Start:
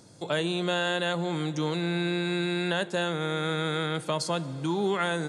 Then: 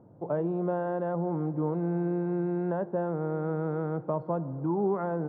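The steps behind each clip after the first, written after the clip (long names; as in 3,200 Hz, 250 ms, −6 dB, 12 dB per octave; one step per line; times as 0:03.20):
low-pass filter 1,000 Hz 24 dB per octave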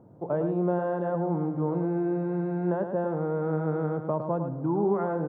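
single-tap delay 107 ms −7.5 dB
level +1.5 dB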